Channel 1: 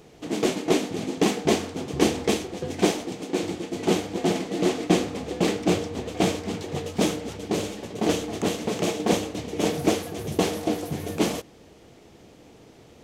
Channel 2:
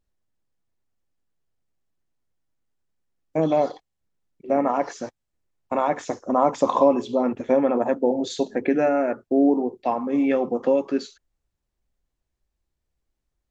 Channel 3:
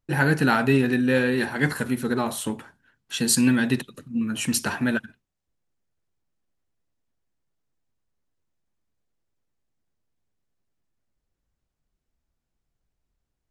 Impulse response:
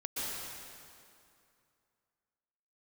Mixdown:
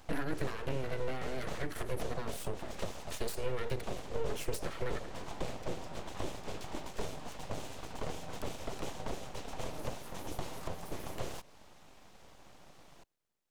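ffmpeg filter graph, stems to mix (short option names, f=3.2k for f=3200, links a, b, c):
-filter_complex "[0:a]volume=-4dB[a];[2:a]bandreject=f=60:t=h:w=6,bandreject=f=120:t=h:w=6,bandreject=f=180:t=h:w=6,bandreject=f=240:t=h:w=6,volume=1.5dB[b];[a][b]amix=inputs=2:normalize=0,highpass=140,acompressor=threshold=-22dB:ratio=6,volume=0dB,acrossover=split=220[c][d];[d]acompressor=threshold=-38dB:ratio=10[e];[c][e]amix=inputs=2:normalize=0,aeval=exprs='abs(val(0))':c=same"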